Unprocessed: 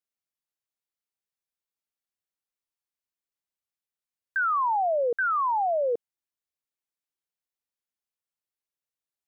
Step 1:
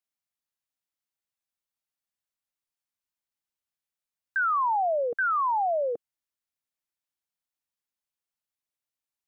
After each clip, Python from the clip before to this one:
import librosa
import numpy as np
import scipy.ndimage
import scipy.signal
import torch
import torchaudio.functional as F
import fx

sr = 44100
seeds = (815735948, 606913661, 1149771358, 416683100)

y = fx.peak_eq(x, sr, hz=420.0, db=-9.0, octaves=0.36)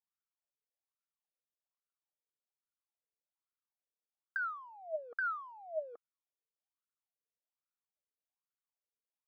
y = scipy.signal.medfilt(x, 15)
y = fx.over_compress(y, sr, threshold_db=-30.0, ratio=-0.5)
y = fx.wah_lfo(y, sr, hz=1.2, low_hz=440.0, high_hz=1400.0, q=8.4)
y = F.gain(torch.from_numpy(y), 1.5).numpy()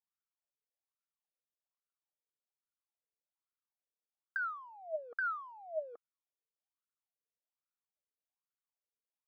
y = x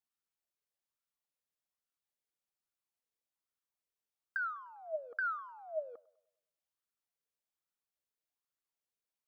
y = fx.echo_wet_bandpass(x, sr, ms=100, feedback_pct=45, hz=940.0, wet_db=-21.5)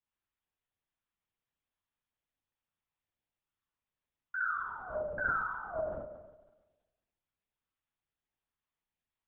y = fx.vibrato(x, sr, rate_hz=0.38, depth_cents=34.0)
y = fx.rev_spring(y, sr, rt60_s=1.2, pass_ms=(46,), chirp_ms=50, drr_db=-2.5)
y = fx.lpc_vocoder(y, sr, seeds[0], excitation='whisper', order=8)